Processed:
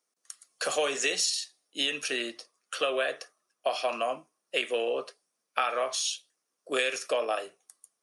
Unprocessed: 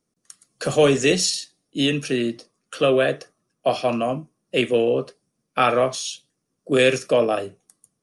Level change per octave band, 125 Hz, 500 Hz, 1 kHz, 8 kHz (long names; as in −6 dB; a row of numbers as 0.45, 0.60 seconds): below −30 dB, −11.0 dB, −7.0 dB, −3.5 dB